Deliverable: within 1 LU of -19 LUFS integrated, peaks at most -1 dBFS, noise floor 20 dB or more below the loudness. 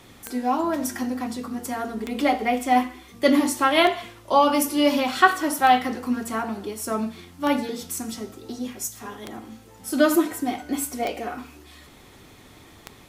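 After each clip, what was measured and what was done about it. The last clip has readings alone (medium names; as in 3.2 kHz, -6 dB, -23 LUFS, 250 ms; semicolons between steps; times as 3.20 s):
clicks found 8; loudness -23.5 LUFS; peak level -1.5 dBFS; loudness target -19.0 LUFS
-> de-click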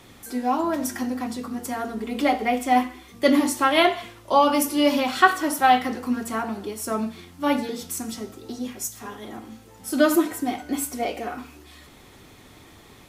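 clicks found 0; loudness -23.5 LUFS; peak level -1.5 dBFS; loudness target -19.0 LUFS
-> trim +4.5 dB; peak limiter -1 dBFS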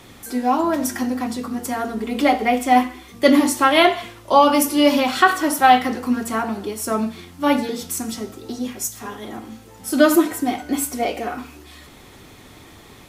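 loudness -19.0 LUFS; peak level -1.0 dBFS; noise floor -45 dBFS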